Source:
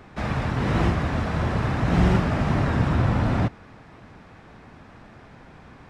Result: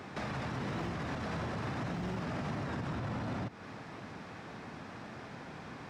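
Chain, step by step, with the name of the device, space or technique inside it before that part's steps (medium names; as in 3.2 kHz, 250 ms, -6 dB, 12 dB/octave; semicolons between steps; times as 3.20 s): broadcast voice chain (high-pass 120 Hz 12 dB/octave; de-esser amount 100%; compression 4:1, threshold -30 dBFS, peak gain reduction 11.5 dB; peaking EQ 5.4 kHz +4 dB 1.1 oct; peak limiter -31 dBFS, peak gain reduction 10.5 dB); trim +1.5 dB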